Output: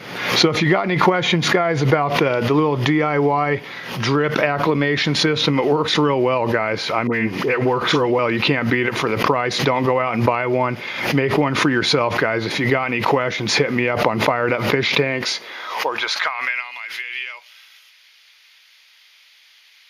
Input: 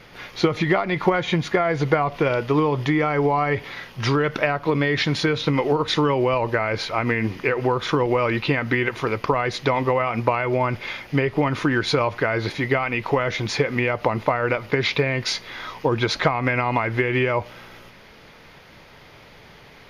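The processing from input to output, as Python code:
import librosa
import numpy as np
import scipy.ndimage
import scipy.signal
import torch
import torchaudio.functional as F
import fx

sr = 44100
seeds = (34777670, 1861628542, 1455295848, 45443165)

y = fx.dispersion(x, sr, late='highs', ms=64.0, hz=1500.0, at=(7.07, 8.19))
y = fx.filter_sweep_highpass(y, sr, from_hz=160.0, to_hz=3000.0, start_s=14.96, end_s=16.77, q=1.0)
y = fx.pre_swell(y, sr, db_per_s=60.0)
y = y * librosa.db_to_amplitude(2.0)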